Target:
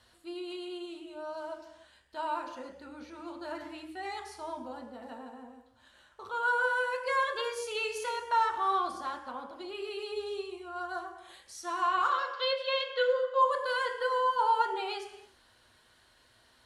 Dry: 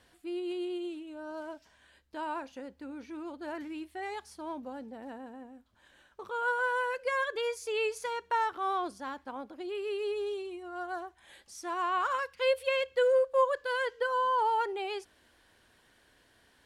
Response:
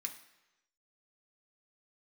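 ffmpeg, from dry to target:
-filter_complex "[0:a]asettb=1/sr,asplit=3[a][b][c];[a]atrim=end=12.104[d];[b]atrim=start=12.1:end=13.42,asetpts=PTS-STARTPTS,afade=t=in:d=0.004:c=qsin,afade=t=out:st=1.316:d=0.004:c=qsin,highpass=260,equalizer=f=260:t=q:w=4:g=-8,equalizer=f=880:t=q:w=4:g=-9,equalizer=f=1.3k:t=q:w=4:g=5,equalizer=f=2.4k:t=q:w=4:g=-6,equalizer=f=3.6k:t=q:w=4:g=8,lowpass=f=5.5k:w=0.5412,lowpass=f=5.5k:w=1.3066[e];[c]atrim=start=13.416[f];[d][e]acrossfade=d=0.004:c1=hsin:c2=qsin[g];[g][f]acrossfade=d=0.004:c1=qsin:c2=hsin[h];[1:a]atrim=start_sample=2205,afade=t=out:st=0.23:d=0.01,atrim=end_sample=10584,asetrate=23814,aresample=44100[i];[h][i]afir=irnorm=-1:irlink=0,volume=-1dB"

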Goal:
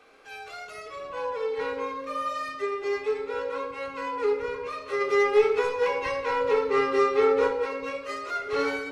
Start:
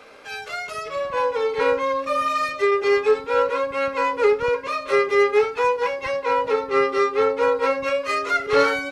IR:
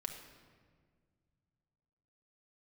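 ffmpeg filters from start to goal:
-filter_complex "[0:a]asplit=3[a][b][c];[a]afade=t=out:st=5:d=0.02[d];[b]acontrast=83,afade=t=in:st=5:d=0.02,afade=t=out:st=7.47:d=0.02[e];[c]afade=t=in:st=7.47:d=0.02[f];[d][e][f]amix=inputs=3:normalize=0[g];[1:a]atrim=start_sample=2205,asetrate=79380,aresample=44100[h];[g][h]afir=irnorm=-1:irlink=0,volume=-3dB"

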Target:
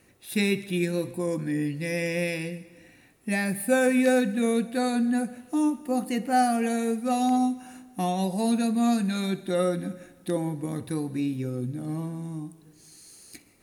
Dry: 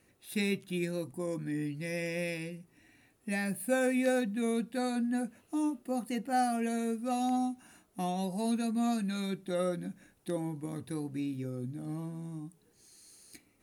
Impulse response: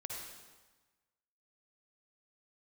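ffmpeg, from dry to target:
-filter_complex "[0:a]asplit=2[a][b];[1:a]atrim=start_sample=2205,adelay=63[c];[b][c]afir=irnorm=-1:irlink=0,volume=-14dB[d];[a][d]amix=inputs=2:normalize=0,volume=7dB"

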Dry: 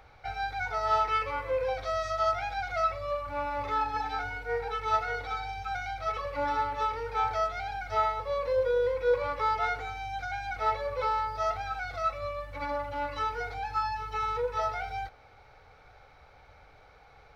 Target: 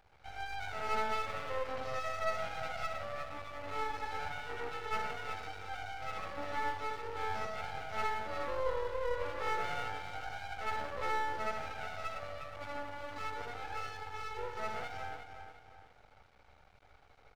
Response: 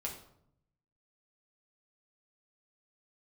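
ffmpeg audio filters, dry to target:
-filter_complex "[0:a]asplit=2[a][b];[b]adelay=359,lowpass=f=4.4k:p=1,volume=-8dB,asplit=2[c][d];[d]adelay=359,lowpass=f=4.4k:p=1,volume=0.38,asplit=2[e][f];[f]adelay=359,lowpass=f=4.4k:p=1,volume=0.38,asplit=2[g][h];[h]adelay=359,lowpass=f=4.4k:p=1,volume=0.38[i];[a][c][e][g][i]amix=inputs=5:normalize=0,asplit=2[j][k];[1:a]atrim=start_sample=2205,adelay=71[l];[k][l]afir=irnorm=-1:irlink=0,volume=-0.5dB[m];[j][m]amix=inputs=2:normalize=0,aeval=exprs='max(val(0),0)':c=same,volume=-7.5dB"

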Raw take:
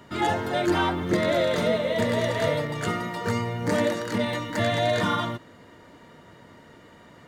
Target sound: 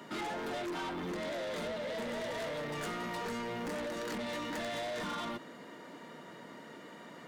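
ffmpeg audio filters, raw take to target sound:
-af "highpass=f=170:w=0.5412,highpass=f=170:w=1.3066,acompressor=threshold=-28dB:ratio=12,asoftclip=type=tanh:threshold=-36.5dB,volume=1dB"

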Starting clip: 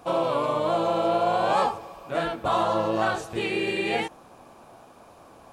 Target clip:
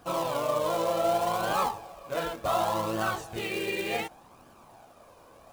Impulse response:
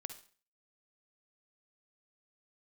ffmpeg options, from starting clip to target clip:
-af "acrusher=bits=3:mode=log:mix=0:aa=0.000001,flanger=delay=0.6:depth=1.5:regen=46:speed=0.67:shape=triangular"

